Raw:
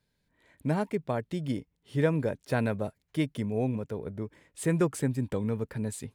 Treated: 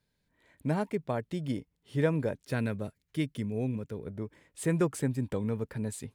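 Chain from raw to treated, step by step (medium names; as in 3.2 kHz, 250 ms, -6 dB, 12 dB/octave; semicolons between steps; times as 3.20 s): 2.43–4.08 s: peaking EQ 760 Hz -8 dB 1.2 oct; trim -1.5 dB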